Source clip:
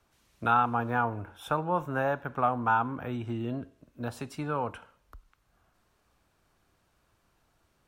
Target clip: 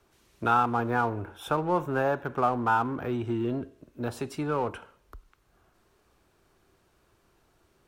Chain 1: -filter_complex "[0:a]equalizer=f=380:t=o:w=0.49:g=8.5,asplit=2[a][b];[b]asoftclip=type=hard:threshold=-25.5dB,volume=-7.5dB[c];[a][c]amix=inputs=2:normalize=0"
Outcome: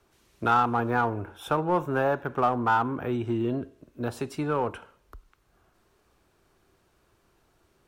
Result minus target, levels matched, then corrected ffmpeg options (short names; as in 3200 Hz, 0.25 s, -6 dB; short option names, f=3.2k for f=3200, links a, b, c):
hard clip: distortion -6 dB
-filter_complex "[0:a]equalizer=f=380:t=o:w=0.49:g=8.5,asplit=2[a][b];[b]asoftclip=type=hard:threshold=-37dB,volume=-7.5dB[c];[a][c]amix=inputs=2:normalize=0"